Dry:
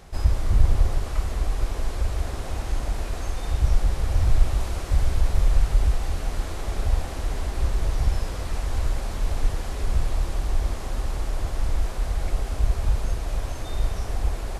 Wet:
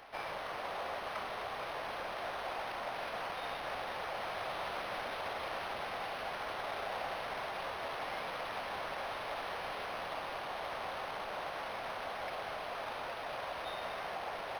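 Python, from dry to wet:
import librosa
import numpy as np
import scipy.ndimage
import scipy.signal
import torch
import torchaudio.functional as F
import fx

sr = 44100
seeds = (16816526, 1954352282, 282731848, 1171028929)

y = scipy.signal.sosfilt(scipy.signal.butter(4, 570.0, 'highpass', fs=sr, output='sos'), x)
y = np.interp(np.arange(len(y)), np.arange(len(y))[::6], y[::6])
y = F.gain(torch.from_numpy(y), 1.0).numpy()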